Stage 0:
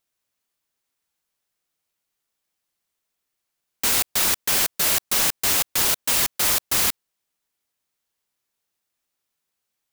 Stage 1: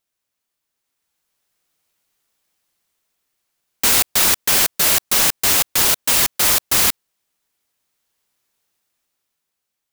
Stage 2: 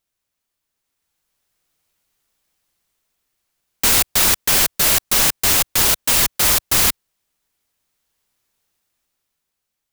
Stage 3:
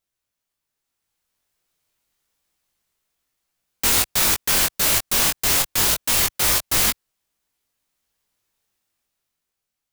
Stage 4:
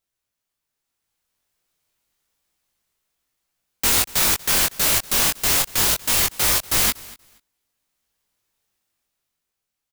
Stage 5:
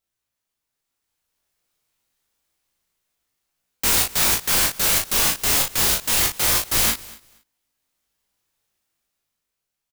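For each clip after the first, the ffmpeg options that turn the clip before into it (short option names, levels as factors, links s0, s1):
-af "dynaudnorm=f=270:g=9:m=2.82"
-af "lowshelf=f=100:g=9"
-af "flanger=delay=18:depth=3.6:speed=0.27"
-af "aecho=1:1:238|476:0.0841|0.0143"
-filter_complex "[0:a]asplit=2[s0][s1];[s1]adelay=36,volume=0.596[s2];[s0][s2]amix=inputs=2:normalize=0,volume=0.841"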